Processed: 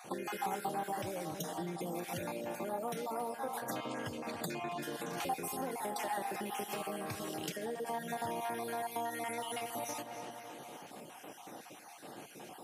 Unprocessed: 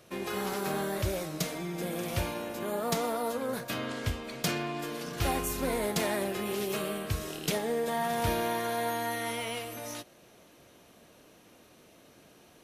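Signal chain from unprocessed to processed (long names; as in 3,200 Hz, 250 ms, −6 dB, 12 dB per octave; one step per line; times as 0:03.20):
time-frequency cells dropped at random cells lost 35%
in parallel at +0.5 dB: brickwall limiter −24.5 dBFS, peak gain reduction 7.5 dB
on the sum: high-pass filter 130 Hz 24 dB per octave
notch filter 670 Hz, Q 19
feedback echo with a low-pass in the loop 274 ms, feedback 57%, low-pass 4,200 Hz, level −14 dB
downward compressor, threshold −40 dBFS, peak gain reduction 16.5 dB
thirty-one-band graphic EQ 800 Hz +12 dB, 4,000 Hz −4 dB, 10,000 Hz +3 dB
convolution reverb RT60 0.35 s, pre-delay 3 ms, DRR 17.5 dB
level +1 dB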